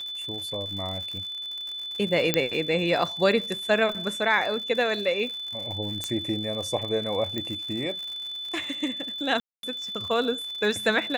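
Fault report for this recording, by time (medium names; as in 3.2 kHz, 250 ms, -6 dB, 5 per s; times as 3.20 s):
crackle 120 per s -34 dBFS
whine 3.5 kHz -32 dBFS
2.34 s: pop -5 dBFS
6.04 s: pop -14 dBFS
7.38 s: pop -17 dBFS
9.40–9.63 s: dropout 232 ms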